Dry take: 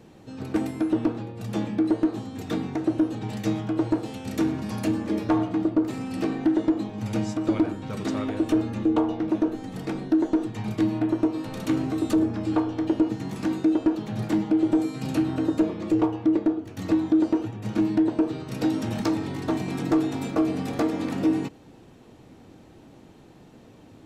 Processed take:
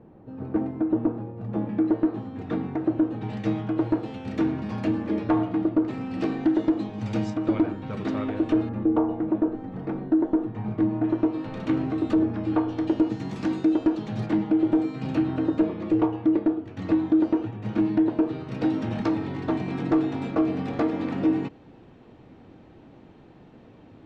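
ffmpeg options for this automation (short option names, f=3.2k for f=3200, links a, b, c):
-af "asetnsamples=n=441:p=0,asendcmd='1.69 lowpass f 1900;3.21 lowpass f 2900;6.2 lowpass f 4800;7.3 lowpass f 3000;8.69 lowpass f 1400;11.04 lowpass f 2800;12.68 lowpass f 5500;14.26 lowpass f 3000',lowpass=1.1k"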